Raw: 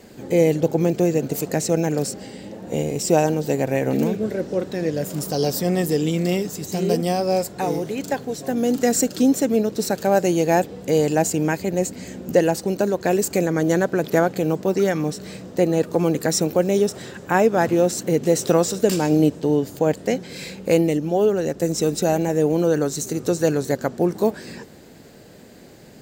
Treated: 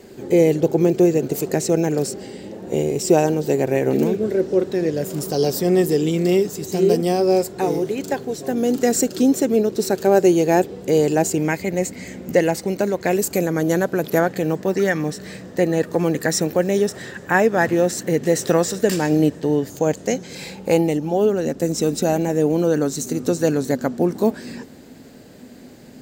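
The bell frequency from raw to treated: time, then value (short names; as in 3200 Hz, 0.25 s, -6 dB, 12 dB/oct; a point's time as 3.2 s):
bell +10.5 dB 0.26 oct
380 Hz
from 11.38 s 2100 Hz
from 13.16 s 12000 Hz
from 14.2 s 1800 Hz
from 19.7 s 6500 Hz
from 20.35 s 840 Hz
from 21.13 s 250 Hz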